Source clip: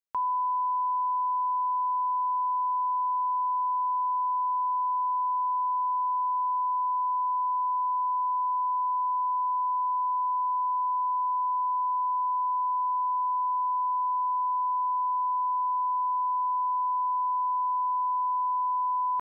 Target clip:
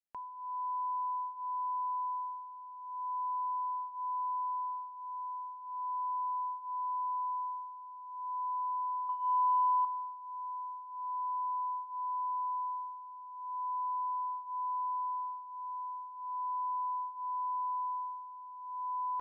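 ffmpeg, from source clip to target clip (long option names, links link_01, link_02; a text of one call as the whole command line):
ffmpeg -i in.wav -filter_complex "[0:a]asettb=1/sr,asplit=3[link_01][link_02][link_03];[link_01]atrim=end=9.094[link_04];[link_02]atrim=start=9.09:end=9.85,asetpts=PTS-STARTPTS,afade=type=in:duration=0.004:curve=qsin,afade=type=out:start_time=0.756:duration=0.004:curve=qsin,acontrast=80[link_05];[link_03]atrim=start=9.846[link_06];[link_04][link_05]acrossfade=duration=0.004:curve1=hsin:curve2=qsin[link_07];[link_07][link_06]acrossfade=duration=0.004:curve1=qsin:curve2=hsin,flanger=delay=0.4:depth=2.1:regen=-40:speed=0.19:shape=sinusoidal,volume=-5dB" out.wav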